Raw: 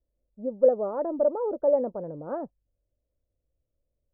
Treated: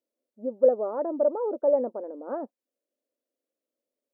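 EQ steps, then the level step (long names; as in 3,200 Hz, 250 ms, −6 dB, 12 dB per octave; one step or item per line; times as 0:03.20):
linear-phase brick-wall high-pass 210 Hz
0.0 dB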